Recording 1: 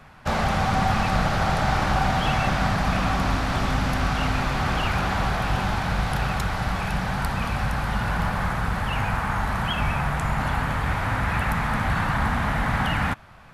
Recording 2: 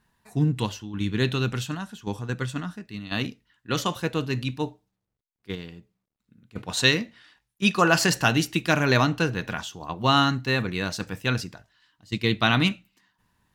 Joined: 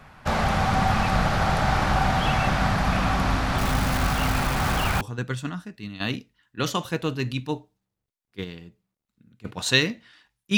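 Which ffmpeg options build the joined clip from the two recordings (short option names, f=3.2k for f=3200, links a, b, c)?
-filter_complex "[0:a]asettb=1/sr,asplit=3[a][b][c];[a]atrim=end=3.584[d];[b]atrim=start=3.58:end=5.01,asetpts=PTS-STARTPTS,afade=t=in:d=0.004:c=qsin,afade=t=out:st=1.426:d=0.004:c=qsin,acrusher=bits=6:dc=4:mix=0:aa=0.000001[e];[c]atrim=start=5.006[f];[d][e]acrossfade=d=0.004:c1=hsin:c2=qsin[g];[g][f]acrossfade=d=0.004:c1=qsin:c2=hsin,apad=whole_dur=10.57,atrim=end=10.57,atrim=end=5.012[h];[1:a]atrim=start=2.118:end=7.68[i];[h][i]acrossfade=d=0.004:c1=hsin:c2=hsin"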